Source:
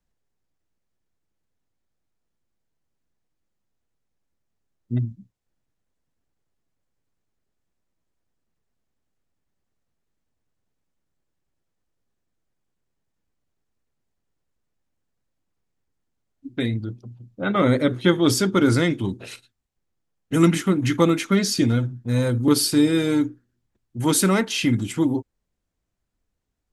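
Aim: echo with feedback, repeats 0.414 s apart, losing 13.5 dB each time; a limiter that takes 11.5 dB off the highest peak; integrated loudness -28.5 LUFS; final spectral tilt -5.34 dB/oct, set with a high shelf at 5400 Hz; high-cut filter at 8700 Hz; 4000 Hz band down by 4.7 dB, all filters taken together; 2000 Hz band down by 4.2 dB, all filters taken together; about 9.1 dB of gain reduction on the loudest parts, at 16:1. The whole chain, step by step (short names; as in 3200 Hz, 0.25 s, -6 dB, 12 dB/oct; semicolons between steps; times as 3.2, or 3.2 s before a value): LPF 8700 Hz; bell 2000 Hz -4.5 dB; bell 4000 Hz -7 dB; high shelf 5400 Hz +5 dB; compressor 16:1, threshold -21 dBFS; limiter -24 dBFS; feedback echo 0.414 s, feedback 21%, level -13.5 dB; gain +4.5 dB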